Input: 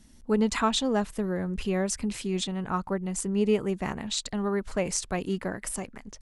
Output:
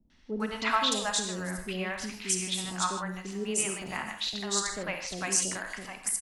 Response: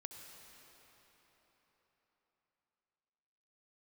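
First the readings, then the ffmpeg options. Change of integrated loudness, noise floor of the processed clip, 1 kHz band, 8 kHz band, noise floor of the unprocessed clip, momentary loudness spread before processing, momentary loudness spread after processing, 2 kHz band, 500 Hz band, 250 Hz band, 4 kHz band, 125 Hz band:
−1.5 dB, −50 dBFS, 0.0 dB, +5.0 dB, −52 dBFS, 7 LU, 9 LU, +3.5 dB, −7.5 dB, −8.5 dB, +3.0 dB, −7.5 dB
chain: -filter_complex "[0:a]tiltshelf=frequency=700:gain=-8,acrossover=split=130[link_01][link_02];[link_01]acrusher=samples=34:mix=1:aa=0.000001:lfo=1:lforange=34:lforate=0.34[link_03];[link_03][link_02]amix=inputs=2:normalize=0,acrossover=split=560|4300[link_04][link_05][link_06];[link_05]adelay=100[link_07];[link_06]adelay=400[link_08];[link_04][link_07][link_08]amix=inputs=3:normalize=0[link_09];[1:a]atrim=start_sample=2205,afade=type=out:start_time=0.36:duration=0.01,atrim=end_sample=16317,asetrate=83790,aresample=44100[link_10];[link_09][link_10]afir=irnorm=-1:irlink=0,volume=8.5dB"

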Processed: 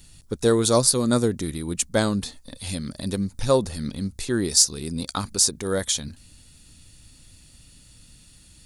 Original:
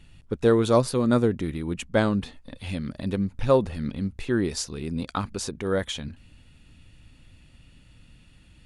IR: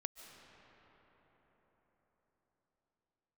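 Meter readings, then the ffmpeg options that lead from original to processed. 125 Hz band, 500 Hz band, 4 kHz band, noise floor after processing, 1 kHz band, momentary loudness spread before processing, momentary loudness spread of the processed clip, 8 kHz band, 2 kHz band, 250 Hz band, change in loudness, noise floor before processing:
0.0 dB, 0.0 dB, +9.5 dB, −52 dBFS, 0.0 dB, 12 LU, 13 LU, +16.0 dB, 0.0 dB, 0.0 dB, +3.0 dB, −54 dBFS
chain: -af "aexciter=amount=4.6:drive=7.3:freq=4000"

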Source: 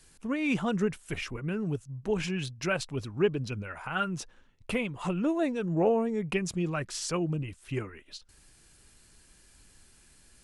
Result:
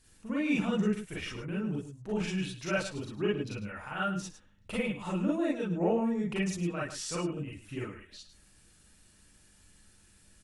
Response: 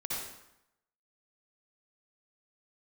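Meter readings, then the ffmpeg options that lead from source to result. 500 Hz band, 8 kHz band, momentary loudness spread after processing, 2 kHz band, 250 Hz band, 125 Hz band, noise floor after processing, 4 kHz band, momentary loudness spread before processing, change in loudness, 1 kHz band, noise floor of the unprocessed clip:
−3.5 dB, −2.5 dB, 11 LU, −2.0 dB, −0.5 dB, −3.0 dB, −62 dBFS, −2.0 dB, 9 LU, −2.0 dB, −2.5 dB, −60 dBFS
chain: -filter_complex "[0:a]aeval=exprs='val(0)+0.000891*(sin(2*PI*50*n/s)+sin(2*PI*2*50*n/s)/2+sin(2*PI*3*50*n/s)/3+sin(2*PI*4*50*n/s)/4+sin(2*PI*5*50*n/s)/5)':channel_layout=same,aecho=1:1:105:0.251[link_01];[1:a]atrim=start_sample=2205,atrim=end_sample=4410,asetrate=70560,aresample=44100[link_02];[link_01][link_02]afir=irnorm=-1:irlink=0"

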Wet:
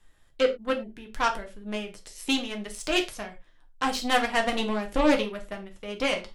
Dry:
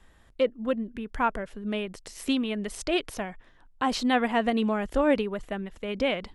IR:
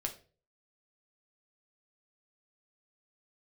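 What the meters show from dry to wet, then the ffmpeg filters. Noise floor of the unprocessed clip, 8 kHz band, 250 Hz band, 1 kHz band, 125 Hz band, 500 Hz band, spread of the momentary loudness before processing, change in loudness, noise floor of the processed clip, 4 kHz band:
−58 dBFS, +3.5 dB, −2.5 dB, +1.0 dB, −4.0 dB, 0.0 dB, 12 LU, +1.0 dB, −58 dBFS, +4.5 dB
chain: -filter_complex "[0:a]aeval=exprs='0.282*(cos(1*acos(clip(val(0)/0.282,-1,1)))-cos(1*PI/2))+0.0251*(cos(7*acos(clip(val(0)/0.282,-1,1)))-cos(7*PI/2))':channel_layout=same,highshelf=frequency=2900:gain=8.5[link_01];[1:a]atrim=start_sample=2205,afade=type=out:start_time=0.16:duration=0.01,atrim=end_sample=7497[link_02];[link_01][link_02]afir=irnorm=-1:irlink=0"

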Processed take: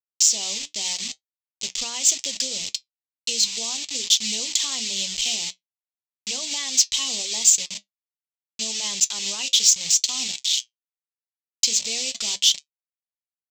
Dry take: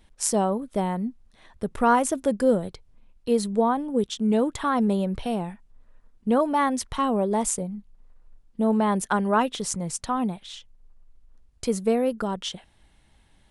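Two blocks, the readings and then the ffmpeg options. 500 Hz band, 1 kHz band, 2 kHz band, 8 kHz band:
−19.0 dB, −18.5 dB, +0.5 dB, +14.5 dB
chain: -af "tiltshelf=frequency=1300:gain=-3.5,bandreject=frequency=60:width_type=h:width=6,bandreject=frequency=120:width_type=h:width=6,bandreject=frequency=180:width_type=h:width=6,bandreject=frequency=240:width_type=h:width=6,bandreject=frequency=300:width_type=h:width=6,bandreject=frequency=360:width_type=h:width=6,bandreject=frequency=420:width_type=h:width=6,aresample=16000,acrusher=bits=5:mix=0:aa=0.000001,aresample=44100,alimiter=limit=-19.5dB:level=0:latency=1:release=114,aexciter=amount=12.9:drive=9.7:freq=2400,flanger=delay=6.7:depth=1.9:regen=-65:speed=0.79:shape=triangular,volume=-8.5dB"

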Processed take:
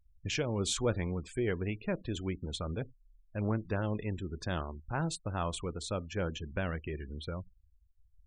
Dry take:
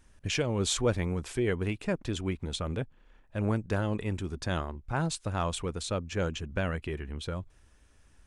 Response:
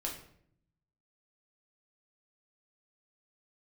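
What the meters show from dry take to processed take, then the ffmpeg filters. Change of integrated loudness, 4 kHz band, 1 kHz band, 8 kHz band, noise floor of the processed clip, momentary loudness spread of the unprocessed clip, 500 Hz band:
−3.5 dB, −4.0 dB, −3.5 dB, −4.0 dB, −66 dBFS, 9 LU, −3.5 dB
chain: -filter_complex "[0:a]asplit=2[link_01][link_02];[1:a]atrim=start_sample=2205,atrim=end_sample=4410[link_03];[link_02][link_03]afir=irnorm=-1:irlink=0,volume=-16.5dB[link_04];[link_01][link_04]amix=inputs=2:normalize=0,afftdn=noise_reduction=14:noise_floor=-47,afftfilt=real='re*gte(hypot(re,im),0.00631)':imag='im*gte(hypot(re,im),0.00631)':win_size=1024:overlap=0.75,volume=-4.5dB"

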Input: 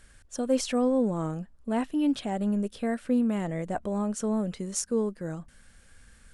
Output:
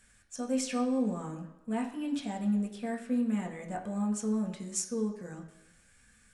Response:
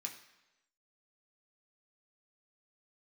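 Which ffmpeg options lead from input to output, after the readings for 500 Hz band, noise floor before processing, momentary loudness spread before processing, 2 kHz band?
−8.0 dB, −57 dBFS, 9 LU, −3.5 dB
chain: -filter_complex "[1:a]atrim=start_sample=2205,asetrate=43218,aresample=44100[link_01];[0:a][link_01]afir=irnorm=-1:irlink=0,volume=-2dB"

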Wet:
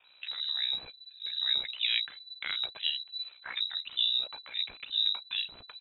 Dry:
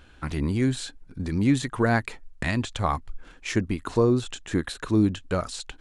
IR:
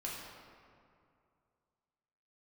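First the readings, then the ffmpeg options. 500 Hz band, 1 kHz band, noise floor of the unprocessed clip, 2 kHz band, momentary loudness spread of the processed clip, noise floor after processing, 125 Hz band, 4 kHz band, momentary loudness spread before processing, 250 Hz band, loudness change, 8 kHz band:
−31.0 dB, −20.0 dB, −52 dBFS, −7.0 dB, 11 LU, −58 dBFS, below −40 dB, +11.5 dB, 11 LU, below −40 dB, −4.5 dB, below −40 dB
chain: -filter_complex "[0:a]acrossover=split=310[link_01][link_02];[link_01]adelay=40[link_03];[link_03][link_02]amix=inputs=2:normalize=0,aeval=exprs='val(0)*sin(2*PI*31*n/s)':channel_layout=same,lowpass=frequency=3400:width_type=q:width=0.5098,lowpass=frequency=3400:width_type=q:width=0.6013,lowpass=frequency=3400:width_type=q:width=0.9,lowpass=frequency=3400:width_type=q:width=2.563,afreqshift=-4000,volume=-4dB"

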